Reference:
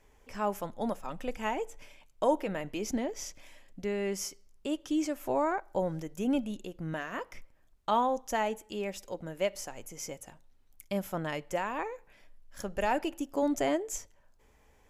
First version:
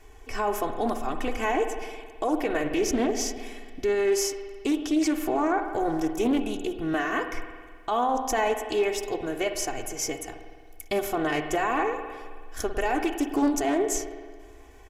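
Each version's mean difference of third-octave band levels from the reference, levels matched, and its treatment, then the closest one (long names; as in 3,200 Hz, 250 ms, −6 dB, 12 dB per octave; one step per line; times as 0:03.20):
6.5 dB: comb filter 2.7 ms, depth 96%
brickwall limiter −25.5 dBFS, peak gain reduction 11 dB
spring reverb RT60 1.7 s, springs 53 ms, chirp 60 ms, DRR 6.5 dB
highs frequency-modulated by the lows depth 0.22 ms
level +8 dB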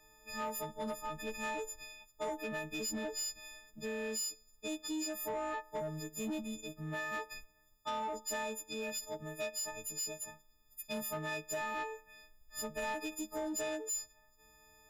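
8.5 dB: every partial snapped to a pitch grid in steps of 6 semitones
parametric band 9,400 Hz −11 dB 0.22 octaves
downward compressor 5 to 1, threshold −28 dBFS, peak gain reduction 8.5 dB
soft clipping −28 dBFS, distortion −15 dB
level −4 dB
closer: first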